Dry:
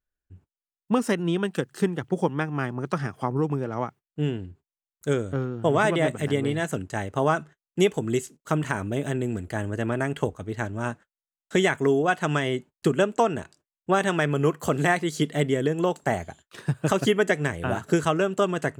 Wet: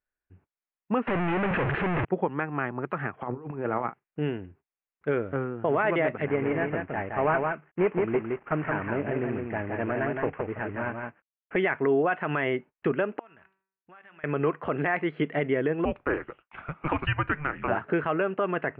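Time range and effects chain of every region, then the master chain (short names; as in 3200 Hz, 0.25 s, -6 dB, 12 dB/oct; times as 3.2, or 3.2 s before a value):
1.07–2.05 infinite clipping + low shelf 140 Hz +8.5 dB
3.21–4.2 negative-ratio compressor -30 dBFS, ratio -0.5 + doubler 41 ms -13.5 dB
6.25–11.56 CVSD 16 kbps + air absorption 230 m + echo 0.168 s -4 dB
13.19–14.24 passive tone stack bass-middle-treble 5-5-5 + de-hum 191.6 Hz, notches 35 + compressor, threshold -50 dBFS
15.85–17.68 HPF 230 Hz + frequency shift -300 Hz
whole clip: steep low-pass 2600 Hz 48 dB/oct; low shelf 260 Hz -12 dB; limiter -18.5 dBFS; gain +3.5 dB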